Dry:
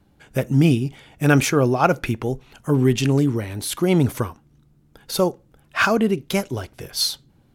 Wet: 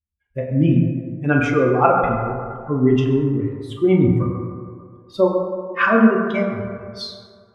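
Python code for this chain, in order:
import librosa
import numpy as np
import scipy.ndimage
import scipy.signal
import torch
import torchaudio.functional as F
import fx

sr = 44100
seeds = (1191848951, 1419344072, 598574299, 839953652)

p1 = fx.bin_expand(x, sr, power=2.0)
p2 = scipy.signal.sosfilt(scipy.signal.butter(2, 2200.0, 'lowpass', fs=sr, output='sos'), p1)
p3 = fx.rider(p2, sr, range_db=4, speed_s=0.5)
p4 = p2 + (p3 * librosa.db_to_amplitude(-1.0))
p5 = fx.rev_fdn(p4, sr, rt60_s=2.2, lf_ratio=0.8, hf_ratio=0.35, size_ms=79.0, drr_db=-2.0)
y = p5 * librosa.db_to_amplitude(-2.5)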